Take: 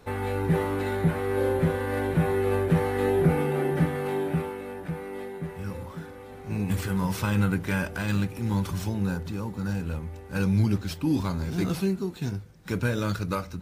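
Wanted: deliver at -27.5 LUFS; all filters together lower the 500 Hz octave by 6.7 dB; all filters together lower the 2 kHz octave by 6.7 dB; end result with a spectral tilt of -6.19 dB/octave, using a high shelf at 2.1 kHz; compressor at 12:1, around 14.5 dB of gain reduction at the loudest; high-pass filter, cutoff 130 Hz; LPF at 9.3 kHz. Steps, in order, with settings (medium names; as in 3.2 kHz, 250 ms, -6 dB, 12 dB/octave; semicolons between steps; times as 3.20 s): high-pass 130 Hz; low-pass 9.3 kHz; peaking EQ 500 Hz -8.5 dB; peaking EQ 2 kHz -4 dB; treble shelf 2.1 kHz -8.5 dB; compression 12:1, threshold -35 dBFS; trim +13 dB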